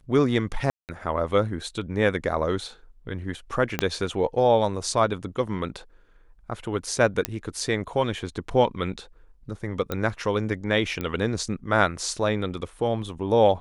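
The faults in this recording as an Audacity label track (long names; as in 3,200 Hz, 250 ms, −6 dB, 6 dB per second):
0.700000	0.890000	drop-out 188 ms
3.790000	3.790000	click −8 dBFS
7.250000	7.250000	click −7 dBFS
9.920000	9.920000	click −13 dBFS
11.010000	11.010000	click −16 dBFS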